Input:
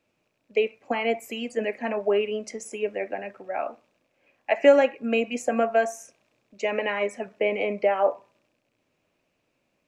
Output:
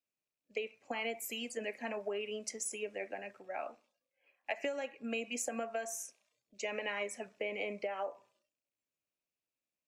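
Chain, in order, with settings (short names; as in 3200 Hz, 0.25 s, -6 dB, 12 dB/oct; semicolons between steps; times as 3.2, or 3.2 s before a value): spectral noise reduction 16 dB; compressor 16:1, threshold -23 dBFS, peak gain reduction 13.5 dB; pre-emphasis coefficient 0.8; gain +2.5 dB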